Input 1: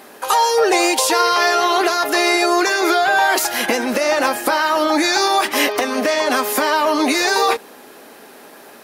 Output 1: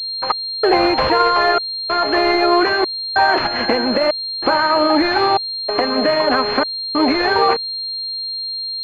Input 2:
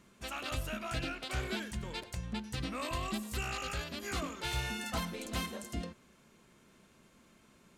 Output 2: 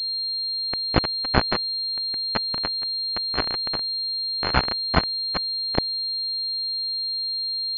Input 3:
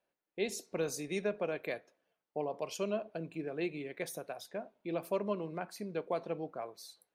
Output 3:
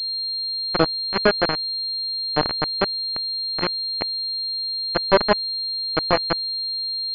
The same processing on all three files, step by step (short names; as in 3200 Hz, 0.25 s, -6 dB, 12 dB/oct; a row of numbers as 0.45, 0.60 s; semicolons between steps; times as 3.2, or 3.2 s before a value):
sample gate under -27.5 dBFS; step gate "xx..xxxx" 95 bpm -60 dB; pulse-width modulation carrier 4200 Hz; normalise peaks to -2 dBFS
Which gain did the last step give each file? +2.0, +23.5, +19.5 dB